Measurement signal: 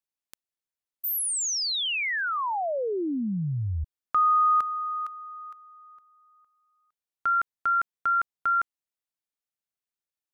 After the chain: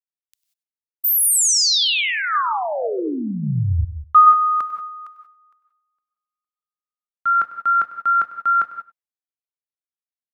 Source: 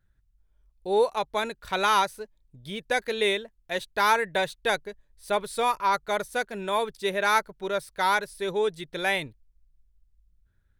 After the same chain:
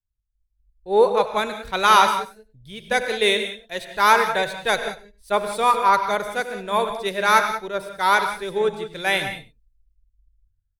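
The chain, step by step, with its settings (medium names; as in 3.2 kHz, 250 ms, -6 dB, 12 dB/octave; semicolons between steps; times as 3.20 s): dynamic bell 1.2 kHz, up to +5 dB, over -41 dBFS, Q 5.9; level rider gain up to 7 dB; on a send: delay 98 ms -16 dB; on the sum: gated-style reverb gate 210 ms rising, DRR 6 dB; three bands expanded up and down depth 70%; trim -2.5 dB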